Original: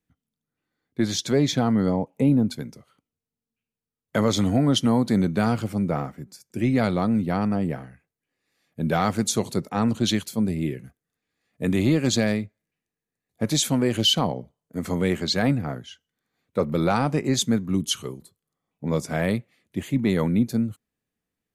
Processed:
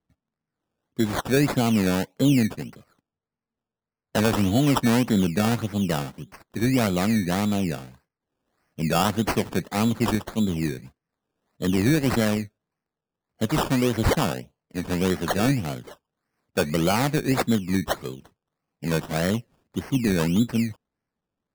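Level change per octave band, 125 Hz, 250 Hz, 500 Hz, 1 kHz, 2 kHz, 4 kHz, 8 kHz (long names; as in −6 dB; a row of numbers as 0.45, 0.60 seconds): 0.0, 0.0, 0.0, +1.0, +3.0, −4.5, −3.0 decibels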